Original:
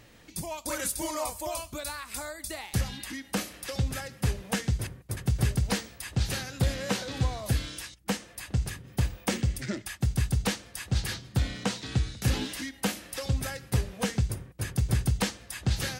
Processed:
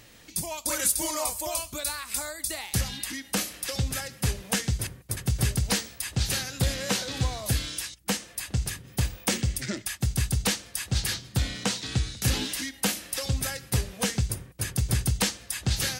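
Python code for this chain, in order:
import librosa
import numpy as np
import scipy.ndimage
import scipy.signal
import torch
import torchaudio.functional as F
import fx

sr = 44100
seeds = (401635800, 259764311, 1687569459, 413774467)

y = fx.high_shelf(x, sr, hz=2800.0, db=8.5)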